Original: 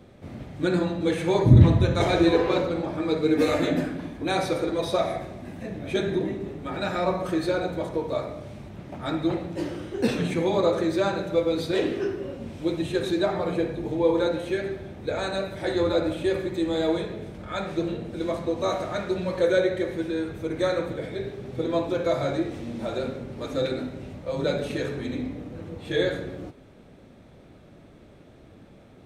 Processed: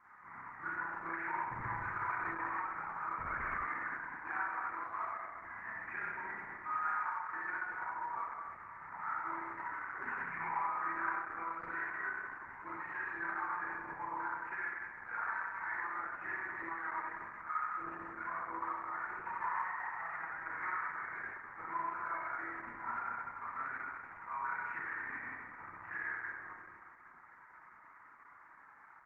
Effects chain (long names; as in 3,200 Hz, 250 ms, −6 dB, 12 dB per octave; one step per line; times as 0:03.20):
0:19.34–0:20.20: lower of the sound and its delayed copy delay 1.6 ms
elliptic band-pass filter 950–2,000 Hz, stop band 40 dB
reverb reduction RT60 0.78 s
spectral tilt −3 dB per octave
downward compressor 4 to 1, threshold −48 dBFS, peak gain reduction 15 dB
0:16.94–0:17.64: double-tracking delay 45 ms −7.5 dB
repeating echo 679 ms, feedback 38%, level −20 dB
spring reverb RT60 1.8 s, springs 30/42 ms, chirp 80 ms, DRR −7.5 dB
0:03.18–0:03.66: linear-prediction vocoder at 8 kHz whisper
level +4 dB
Opus 10 kbit/s 48,000 Hz